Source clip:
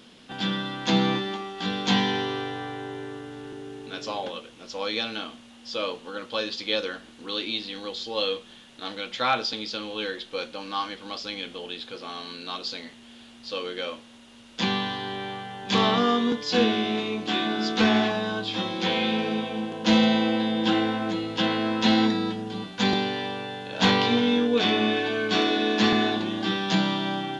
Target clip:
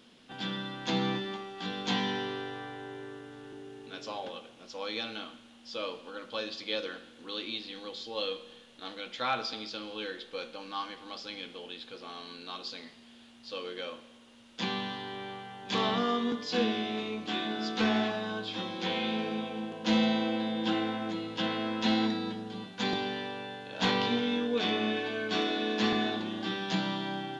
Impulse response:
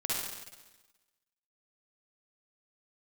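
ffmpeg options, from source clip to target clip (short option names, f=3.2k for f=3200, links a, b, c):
-filter_complex "[0:a]bandreject=f=50:t=h:w=6,bandreject=f=100:t=h:w=6,bandreject=f=150:t=h:w=6,bandreject=f=200:t=h:w=6,asplit=2[a][b];[1:a]atrim=start_sample=2205,lowpass=5.3k[c];[b][c]afir=irnorm=-1:irlink=0,volume=-18dB[d];[a][d]amix=inputs=2:normalize=0,volume=-8dB"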